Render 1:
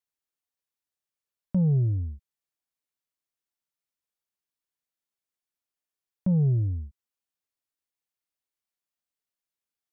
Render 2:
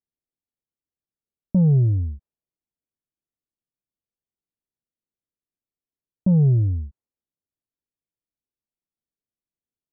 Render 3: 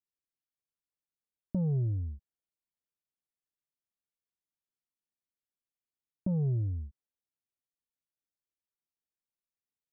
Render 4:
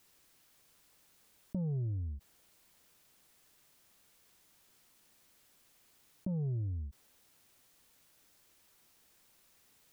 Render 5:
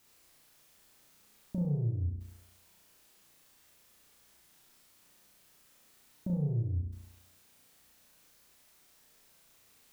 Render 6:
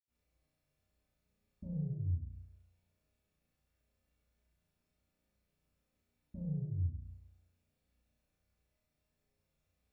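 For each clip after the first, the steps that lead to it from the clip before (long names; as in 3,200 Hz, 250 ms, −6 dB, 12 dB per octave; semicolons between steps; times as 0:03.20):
low-pass that shuts in the quiet parts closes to 370 Hz, open at −20.5 dBFS; level +6 dB
dynamic equaliser 170 Hz, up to −5 dB, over −28 dBFS, Q 0.84; level −8.5 dB
envelope flattener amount 50%; level −6 dB
flutter between parallel walls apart 5.8 metres, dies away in 0.77 s
convolution reverb RT60 0.35 s, pre-delay 76 ms; level −7 dB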